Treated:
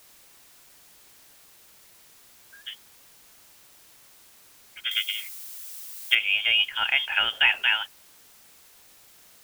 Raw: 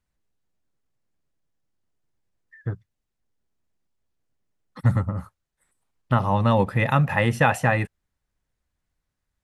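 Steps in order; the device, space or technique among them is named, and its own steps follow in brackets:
scrambled radio voice (band-pass filter 310–2,600 Hz; voice inversion scrambler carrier 3,400 Hz; white noise bed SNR 23 dB)
0:04.91–0:06.15: spectral tilt +4 dB per octave

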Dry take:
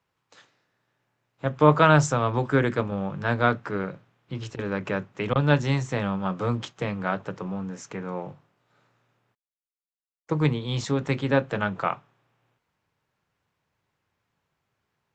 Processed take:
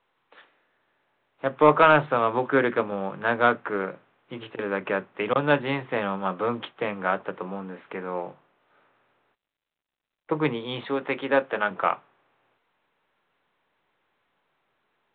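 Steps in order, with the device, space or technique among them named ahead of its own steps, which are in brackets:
0:10.88–0:11.71: high-pass filter 290 Hz 6 dB per octave
telephone (band-pass filter 310–3,300 Hz; soft clipping −8.5 dBFS, distortion −19 dB; level +3.5 dB; mu-law 64 kbit/s 8,000 Hz)

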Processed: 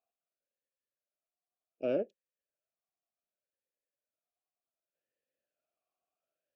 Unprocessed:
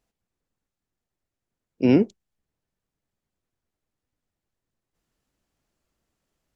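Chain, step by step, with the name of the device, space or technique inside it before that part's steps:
talk box (tube saturation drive 13 dB, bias 0.75; formant filter swept between two vowels a-e 0.67 Hz)
level +4 dB

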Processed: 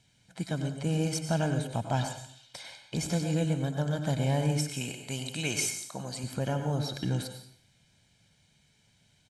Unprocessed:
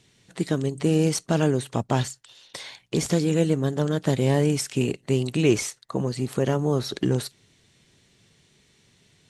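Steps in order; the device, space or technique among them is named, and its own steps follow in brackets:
0:04.73–0:06.24: spectral tilt +2.5 dB per octave
microphone above a desk (comb filter 1.3 ms, depth 67%; convolution reverb RT60 0.55 s, pre-delay 89 ms, DRR 6.5 dB)
level −8 dB

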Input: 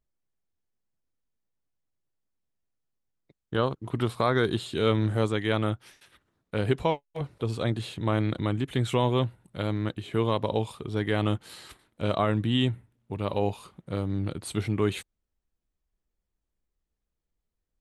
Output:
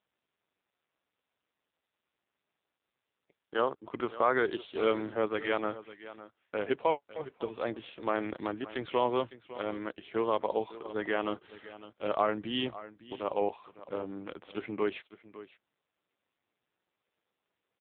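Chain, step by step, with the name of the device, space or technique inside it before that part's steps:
satellite phone (band-pass filter 390–3,200 Hz; single-tap delay 556 ms −16 dB; AMR narrowband 5.9 kbit/s 8,000 Hz)

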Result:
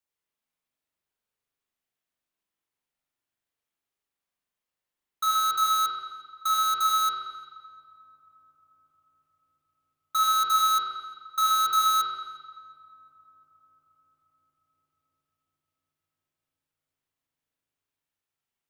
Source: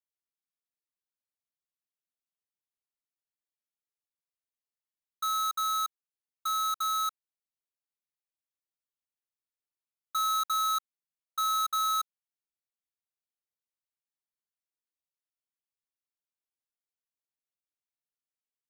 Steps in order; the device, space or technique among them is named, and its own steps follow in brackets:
dub delay into a spring reverb (feedback echo with a low-pass in the loop 355 ms, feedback 84%, low-pass 1,200 Hz, level −20 dB; spring reverb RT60 1.3 s, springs 41 ms, chirp 55 ms, DRR −4 dB)
level +4 dB

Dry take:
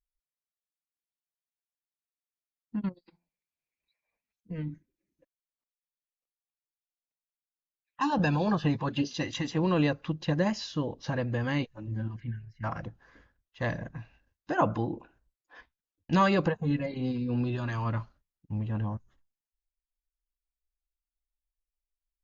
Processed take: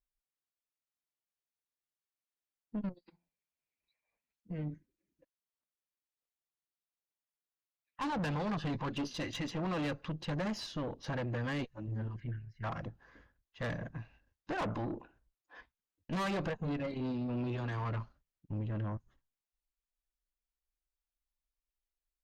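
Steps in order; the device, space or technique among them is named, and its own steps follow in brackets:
tube preamp driven hard (tube saturation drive 32 dB, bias 0.45; high-shelf EQ 4,600 Hz −5 dB)

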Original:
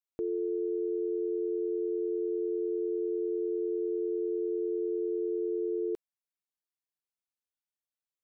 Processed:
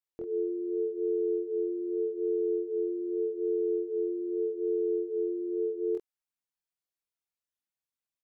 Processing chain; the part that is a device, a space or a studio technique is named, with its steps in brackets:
double-tracked vocal (double-tracking delay 25 ms −3 dB; chorus effect 0.83 Hz, depth 3.7 ms)

